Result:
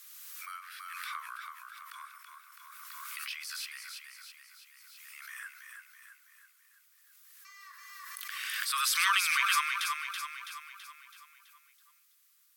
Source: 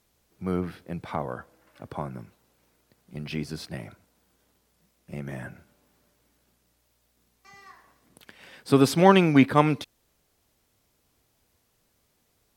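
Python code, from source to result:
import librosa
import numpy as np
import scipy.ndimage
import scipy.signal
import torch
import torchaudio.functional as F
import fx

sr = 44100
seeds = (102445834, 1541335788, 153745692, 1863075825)

p1 = scipy.signal.sosfilt(scipy.signal.butter(16, 1100.0, 'highpass', fs=sr, output='sos'), x)
p2 = fx.high_shelf(p1, sr, hz=8800.0, db=11.5)
p3 = p2 + fx.echo_feedback(p2, sr, ms=329, feedback_pct=53, wet_db=-5.5, dry=0)
p4 = fx.pre_swell(p3, sr, db_per_s=22.0)
y = F.gain(torch.from_numpy(p4), -2.5).numpy()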